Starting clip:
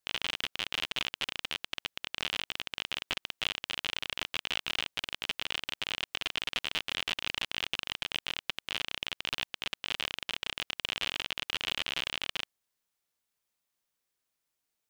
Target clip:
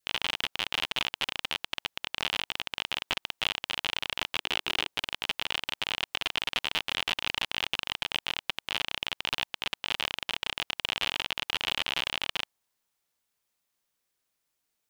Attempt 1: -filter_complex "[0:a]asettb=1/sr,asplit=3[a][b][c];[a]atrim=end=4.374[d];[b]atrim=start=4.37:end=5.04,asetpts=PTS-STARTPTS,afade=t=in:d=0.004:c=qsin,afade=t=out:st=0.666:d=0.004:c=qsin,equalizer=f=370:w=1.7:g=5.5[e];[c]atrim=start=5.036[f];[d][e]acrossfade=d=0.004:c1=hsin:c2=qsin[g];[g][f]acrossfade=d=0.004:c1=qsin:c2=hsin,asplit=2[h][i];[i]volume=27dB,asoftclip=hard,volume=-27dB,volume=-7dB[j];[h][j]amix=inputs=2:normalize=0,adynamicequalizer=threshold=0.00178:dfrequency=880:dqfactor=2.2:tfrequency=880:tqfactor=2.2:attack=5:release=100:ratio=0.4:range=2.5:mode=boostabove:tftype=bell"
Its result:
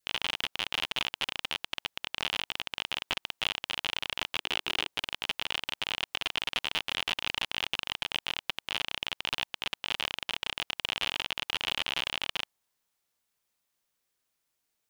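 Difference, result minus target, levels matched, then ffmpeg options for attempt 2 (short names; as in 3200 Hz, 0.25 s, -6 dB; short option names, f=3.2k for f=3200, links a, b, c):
overloaded stage: distortion +12 dB
-filter_complex "[0:a]asettb=1/sr,asplit=3[a][b][c];[a]atrim=end=4.374[d];[b]atrim=start=4.37:end=5.04,asetpts=PTS-STARTPTS,afade=t=in:d=0.004:c=qsin,afade=t=out:st=0.666:d=0.004:c=qsin,equalizer=f=370:w=1.7:g=5.5[e];[c]atrim=start=5.036[f];[d][e]acrossfade=d=0.004:c1=hsin:c2=qsin[g];[g][f]acrossfade=d=0.004:c1=qsin:c2=hsin,asplit=2[h][i];[i]volume=18dB,asoftclip=hard,volume=-18dB,volume=-7dB[j];[h][j]amix=inputs=2:normalize=0,adynamicequalizer=threshold=0.00178:dfrequency=880:dqfactor=2.2:tfrequency=880:tqfactor=2.2:attack=5:release=100:ratio=0.4:range=2.5:mode=boostabove:tftype=bell"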